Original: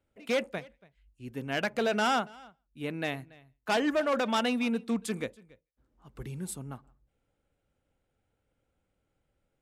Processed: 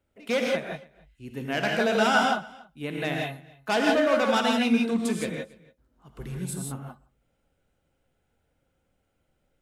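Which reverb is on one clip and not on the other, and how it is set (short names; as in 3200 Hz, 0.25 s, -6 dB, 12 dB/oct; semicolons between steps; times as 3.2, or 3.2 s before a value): non-linear reverb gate 0.19 s rising, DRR -0.5 dB; gain +2 dB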